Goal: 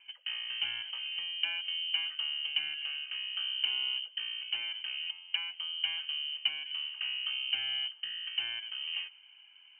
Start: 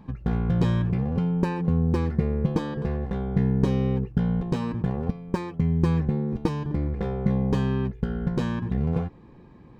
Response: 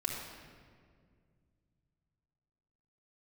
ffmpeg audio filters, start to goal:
-filter_complex "[0:a]highpass=f=260:w=0.5412,highpass=f=260:w=1.3066,highshelf=f=2.2k:g=-5.5,asplit=2[a][b];[1:a]atrim=start_sample=2205[c];[b][c]afir=irnorm=-1:irlink=0,volume=-24.5dB[d];[a][d]amix=inputs=2:normalize=0,lowpass=f=2.8k:t=q:w=0.5098,lowpass=f=2.8k:t=q:w=0.6013,lowpass=f=2.8k:t=q:w=0.9,lowpass=f=2.8k:t=q:w=2.563,afreqshift=-3300,volume=-4dB"

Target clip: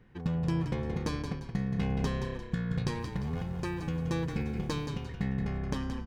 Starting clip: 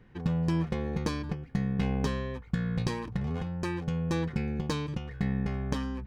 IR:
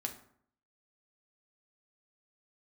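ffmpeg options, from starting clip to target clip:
-filter_complex "[0:a]asettb=1/sr,asplit=3[a][b][c];[a]atrim=end=3.004[d];[b]atrim=start=3:end=4.87,asetpts=PTS-STARTPTS,afade=t=in:d=0.004:c=qsin,afade=t=out:st=1.866:d=0.004:c=qsin,aeval=exprs='val(0)*gte(abs(val(0)),0.00237)':c=same[e];[c]atrim=start=4.866[f];[d][e]acrossfade=d=0.004:c1=hsin:c2=qsin[g];[g][f]acrossfade=d=0.004:c1=qsin:c2=hsin,asplit=2[h][i];[i]asplit=4[j][k][l][m];[j]adelay=174,afreqshift=-32,volume=-7.5dB[n];[k]adelay=348,afreqshift=-64,volume=-15.9dB[o];[l]adelay=522,afreqshift=-96,volume=-24.3dB[p];[m]adelay=696,afreqshift=-128,volume=-32.7dB[q];[n][o][p][q]amix=inputs=4:normalize=0[r];[h][r]amix=inputs=2:normalize=0,volume=-2.5dB"

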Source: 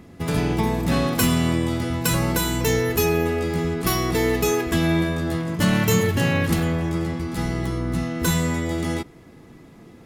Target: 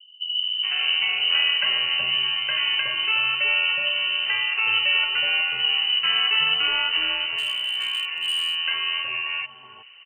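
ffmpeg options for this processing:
-filter_complex "[0:a]acrossover=split=210|2400[a][b][c];[b]adelay=430[d];[c]adelay=800[e];[a][d][e]amix=inputs=3:normalize=0,lowpass=f=2.6k:t=q:w=0.5098,lowpass=f=2.6k:t=q:w=0.6013,lowpass=f=2.6k:t=q:w=0.9,lowpass=f=2.6k:t=q:w=2.563,afreqshift=-3100,asettb=1/sr,asplit=3[f][g][h];[f]atrim=end=7.384[i];[g]atrim=start=7.38:end=8.56,asetpts=PTS-STARTPTS,afade=t=in:d=0.004:c=qsin,afade=t=out:st=1.176:d=0.004:c=qsin,volume=21dB,asoftclip=hard,volume=-21dB[j];[h]atrim=start=8.556[k];[i][j]acrossfade=d=0.004:c1=hsin:c2=qsin[l];[l][k]acrossfade=d=0.004:c1=qsin:c2=hsin"

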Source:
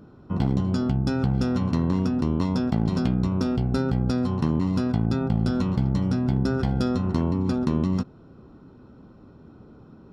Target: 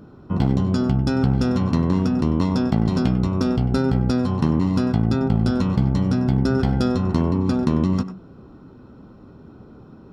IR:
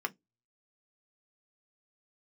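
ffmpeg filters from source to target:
-filter_complex "[0:a]asplit=2[a][b];[1:a]atrim=start_sample=2205,adelay=96[c];[b][c]afir=irnorm=-1:irlink=0,volume=-15.5dB[d];[a][d]amix=inputs=2:normalize=0,volume=4dB"

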